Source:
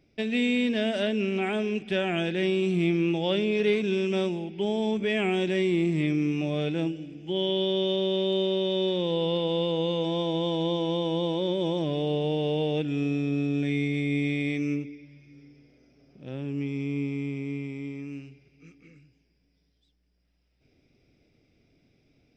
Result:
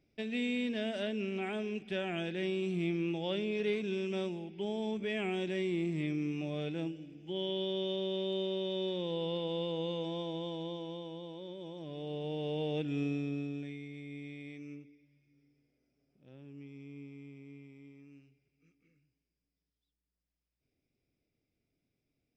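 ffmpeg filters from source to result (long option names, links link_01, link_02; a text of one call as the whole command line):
ffmpeg -i in.wav -af "volume=3dB,afade=type=out:start_time=9.91:duration=1.31:silence=0.354813,afade=type=in:start_time=11.76:duration=1.23:silence=0.251189,afade=type=out:start_time=12.99:duration=0.79:silence=0.237137" out.wav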